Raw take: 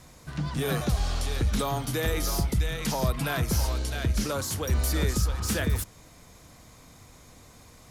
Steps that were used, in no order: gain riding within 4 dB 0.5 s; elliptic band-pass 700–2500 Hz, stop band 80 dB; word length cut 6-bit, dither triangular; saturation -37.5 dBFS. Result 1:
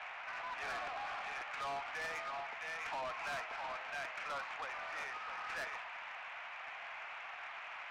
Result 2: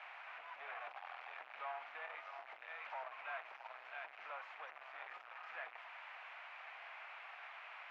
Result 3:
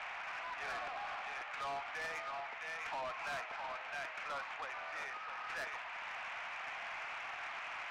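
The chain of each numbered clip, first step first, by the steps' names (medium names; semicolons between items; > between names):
gain riding > word length cut > elliptic band-pass > saturation; word length cut > saturation > gain riding > elliptic band-pass; word length cut > gain riding > elliptic band-pass > saturation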